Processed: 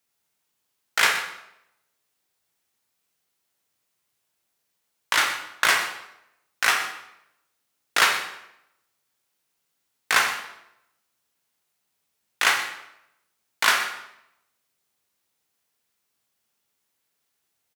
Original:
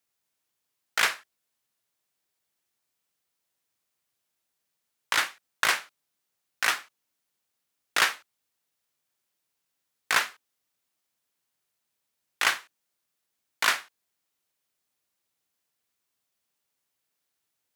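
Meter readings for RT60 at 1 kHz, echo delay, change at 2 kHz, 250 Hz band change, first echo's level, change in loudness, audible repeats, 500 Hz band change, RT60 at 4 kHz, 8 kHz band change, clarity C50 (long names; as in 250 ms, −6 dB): 0.80 s, 123 ms, +5.0 dB, +5.0 dB, −14.0 dB, +4.0 dB, 1, +5.0 dB, 0.65 s, +4.5 dB, 6.0 dB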